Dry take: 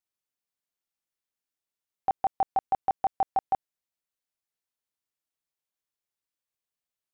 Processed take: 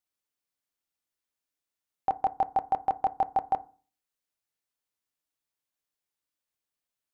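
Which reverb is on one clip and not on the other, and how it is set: FDN reverb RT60 0.39 s, low-frequency decay 1.25×, high-frequency decay 0.35×, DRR 13.5 dB; trim +1 dB

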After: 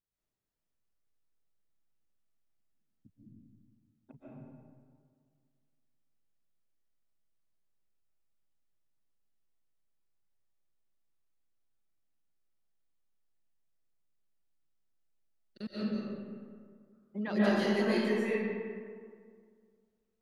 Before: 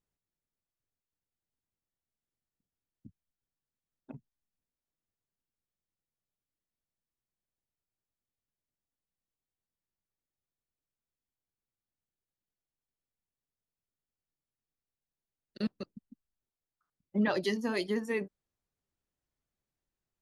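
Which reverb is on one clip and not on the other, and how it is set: algorithmic reverb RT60 2 s, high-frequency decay 0.5×, pre-delay 100 ms, DRR -10 dB; trim -8.5 dB

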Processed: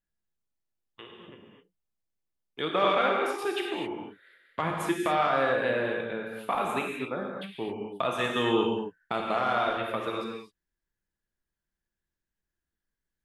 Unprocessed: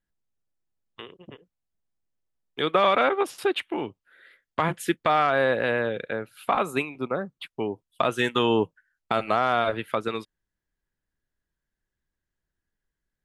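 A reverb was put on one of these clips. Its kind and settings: gated-style reverb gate 280 ms flat, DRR -0.5 dB; trim -6.5 dB

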